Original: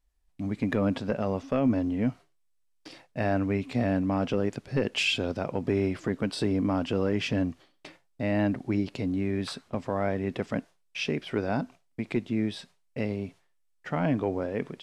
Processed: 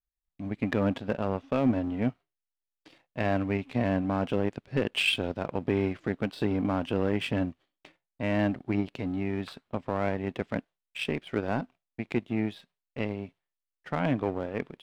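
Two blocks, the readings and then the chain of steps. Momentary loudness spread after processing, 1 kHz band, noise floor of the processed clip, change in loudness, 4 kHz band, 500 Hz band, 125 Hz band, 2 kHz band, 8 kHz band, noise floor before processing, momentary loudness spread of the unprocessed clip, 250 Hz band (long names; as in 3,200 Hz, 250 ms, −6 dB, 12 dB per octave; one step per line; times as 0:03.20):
9 LU, +0.5 dB, below −85 dBFS, −1.0 dB, −0.5 dB, −1.0 dB, −1.5 dB, +0.5 dB, −5.0 dB, −69 dBFS, 9 LU, −1.5 dB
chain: high shelf with overshoot 4,400 Hz −7.5 dB, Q 1.5
power curve on the samples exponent 1.4
level +1.5 dB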